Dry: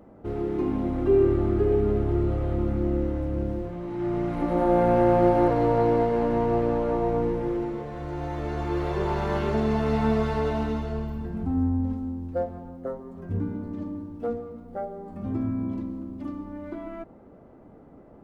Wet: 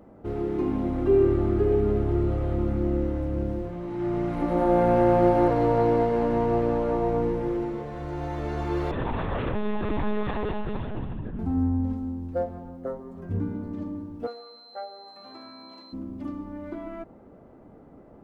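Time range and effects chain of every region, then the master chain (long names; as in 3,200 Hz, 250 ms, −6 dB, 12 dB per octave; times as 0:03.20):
0:08.91–0:11.39: parametric band 490 Hz −4.5 dB 2.1 octaves + one-pitch LPC vocoder at 8 kHz 210 Hz
0:14.26–0:15.92: Chebyshev high-pass filter 850 Hz + steady tone 4,100 Hz −48 dBFS
whole clip: no processing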